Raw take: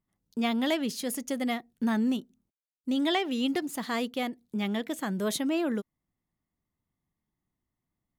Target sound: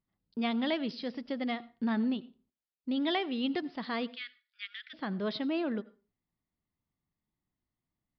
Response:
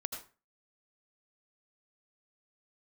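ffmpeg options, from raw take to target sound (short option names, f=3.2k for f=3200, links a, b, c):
-filter_complex "[0:a]asplit=3[a][b][c];[a]afade=t=out:st=4.06:d=0.02[d];[b]asuperpass=centerf=3500:order=20:qfactor=0.52,afade=t=in:st=4.06:d=0.02,afade=t=out:st=4.93:d=0.02[e];[c]afade=t=in:st=4.93:d=0.02[f];[d][e][f]amix=inputs=3:normalize=0,asplit=2[g][h];[1:a]atrim=start_sample=2205,afade=t=out:st=0.38:d=0.01,atrim=end_sample=17199[i];[h][i]afir=irnorm=-1:irlink=0,volume=-14.5dB[j];[g][j]amix=inputs=2:normalize=0,aresample=11025,aresample=44100,volume=-5dB"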